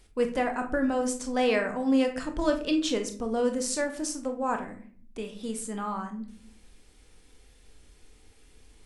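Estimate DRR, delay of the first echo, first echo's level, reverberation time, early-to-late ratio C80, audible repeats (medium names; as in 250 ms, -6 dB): 4.5 dB, no echo, no echo, 0.50 s, 15.5 dB, no echo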